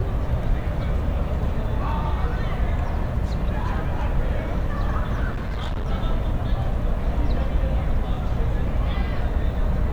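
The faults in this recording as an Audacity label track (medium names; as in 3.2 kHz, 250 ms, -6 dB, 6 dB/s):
5.300000	5.870000	clipped -23 dBFS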